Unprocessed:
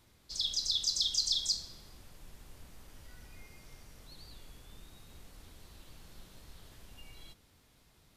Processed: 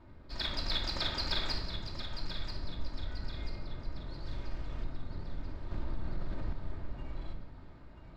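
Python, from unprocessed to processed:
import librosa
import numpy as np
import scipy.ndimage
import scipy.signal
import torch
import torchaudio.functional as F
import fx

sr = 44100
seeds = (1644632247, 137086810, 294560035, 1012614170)

y = scipy.signal.medfilt(x, 15)
y = fx.notch(y, sr, hz=6100.0, q=12.0)
y = fx.quant_dither(y, sr, seeds[0], bits=10, dither='none', at=(4.25, 4.84))
y = fx.air_absorb(y, sr, metres=180.0)
y = fx.echo_thinned(y, sr, ms=986, feedback_pct=44, hz=420.0, wet_db=-9.5)
y = fx.room_shoebox(y, sr, seeds[1], volume_m3=2800.0, walls='furnished', distance_m=2.7)
y = fx.env_flatten(y, sr, amount_pct=50, at=(5.71, 6.53))
y = y * 10.0 ** (9.0 / 20.0)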